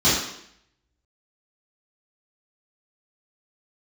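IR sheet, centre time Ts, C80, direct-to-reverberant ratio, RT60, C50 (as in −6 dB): 59 ms, 5.0 dB, −11.5 dB, 0.70 s, 1.0 dB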